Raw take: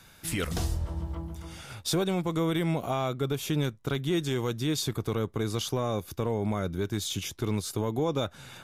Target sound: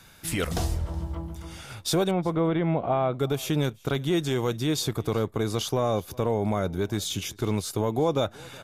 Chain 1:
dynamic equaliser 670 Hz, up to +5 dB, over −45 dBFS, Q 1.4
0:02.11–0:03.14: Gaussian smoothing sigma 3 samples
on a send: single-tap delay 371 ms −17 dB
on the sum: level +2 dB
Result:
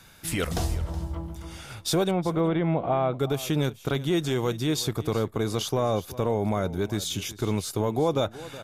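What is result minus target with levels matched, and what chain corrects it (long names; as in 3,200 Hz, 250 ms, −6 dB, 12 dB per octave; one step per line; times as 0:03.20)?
echo-to-direct +7 dB
dynamic equaliser 670 Hz, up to +5 dB, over −45 dBFS, Q 1.4
0:02.11–0:03.14: Gaussian smoothing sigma 3 samples
on a send: single-tap delay 371 ms −24 dB
on the sum: level +2 dB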